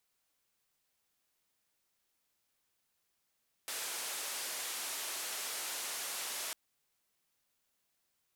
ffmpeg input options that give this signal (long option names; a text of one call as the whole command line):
ffmpeg -f lavfi -i "anoisesrc=color=white:duration=2.85:sample_rate=44100:seed=1,highpass=frequency=430,lowpass=frequency=12000,volume=-32.4dB" out.wav